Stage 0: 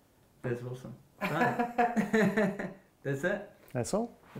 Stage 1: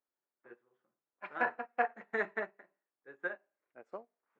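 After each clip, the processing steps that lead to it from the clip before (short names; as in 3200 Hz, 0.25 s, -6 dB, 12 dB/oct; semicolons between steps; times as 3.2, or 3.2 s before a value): Chebyshev band-pass 330–1500 Hz, order 2; tilt shelf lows -8.5 dB, about 1300 Hz; upward expander 2.5:1, over -47 dBFS; gain +3 dB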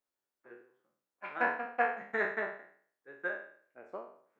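spectral trails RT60 0.54 s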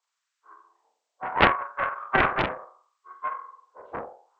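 inharmonic rescaling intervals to 78%; LFO high-pass sine 0.69 Hz 620–1500 Hz; Doppler distortion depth 0.9 ms; gain +8.5 dB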